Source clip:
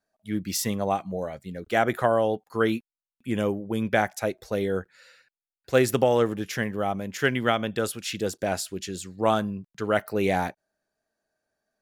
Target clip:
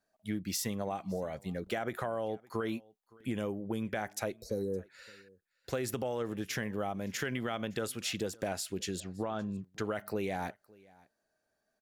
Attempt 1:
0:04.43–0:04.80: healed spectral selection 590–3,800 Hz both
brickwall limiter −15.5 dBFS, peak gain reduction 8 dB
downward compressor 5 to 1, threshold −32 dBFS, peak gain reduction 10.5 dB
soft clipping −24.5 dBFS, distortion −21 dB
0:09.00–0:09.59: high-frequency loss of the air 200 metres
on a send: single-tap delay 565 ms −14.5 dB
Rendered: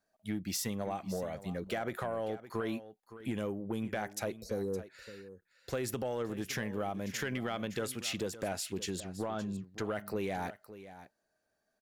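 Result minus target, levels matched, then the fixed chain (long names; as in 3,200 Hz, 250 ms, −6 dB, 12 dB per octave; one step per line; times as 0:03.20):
soft clipping: distortion +16 dB; echo-to-direct +10.5 dB
0:04.43–0:04.80: healed spectral selection 590–3,800 Hz both
brickwall limiter −15.5 dBFS, peak gain reduction 8 dB
downward compressor 5 to 1, threshold −32 dBFS, peak gain reduction 10.5 dB
soft clipping −15 dBFS, distortion −38 dB
0:09.00–0:09.59: high-frequency loss of the air 200 metres
on a send: single-tap delay 565 ms −25 dB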